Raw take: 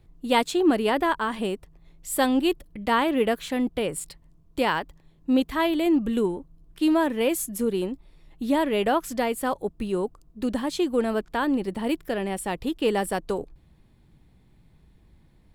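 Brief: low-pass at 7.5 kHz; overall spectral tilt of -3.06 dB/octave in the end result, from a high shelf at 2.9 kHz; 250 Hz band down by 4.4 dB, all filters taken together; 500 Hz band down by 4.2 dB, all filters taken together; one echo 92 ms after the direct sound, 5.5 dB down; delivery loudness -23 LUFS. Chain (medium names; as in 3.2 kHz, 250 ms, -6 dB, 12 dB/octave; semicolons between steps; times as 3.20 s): low-pass 7.5 kHz; peaking EQ 250 Hz -4 dB; peaking EQ 500 Hz -4 dB; treble shelf 2.9 kHz -4.5 dB; delay 92 ms -5.5 dB; trim +5 dB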